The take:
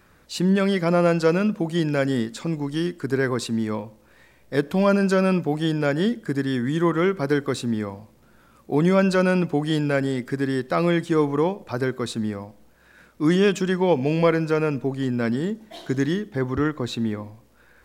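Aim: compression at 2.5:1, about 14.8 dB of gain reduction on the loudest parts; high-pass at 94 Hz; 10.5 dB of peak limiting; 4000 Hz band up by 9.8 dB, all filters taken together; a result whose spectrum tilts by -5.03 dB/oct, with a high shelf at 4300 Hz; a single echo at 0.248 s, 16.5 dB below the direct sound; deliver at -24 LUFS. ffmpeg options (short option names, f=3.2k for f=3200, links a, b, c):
-af "highpass=94,equalizer=f=4k:t=o:g=8.5,highshelf=f=4.3k:g=7.5,acompressor=threshold=-37dB:ratio=2.5,alimiter=level_in=4.5dB:limit=-24dB:level=0:latency=1,volume=-4.5dB,aecho=1:1:248:0.15,volume=14.5dB"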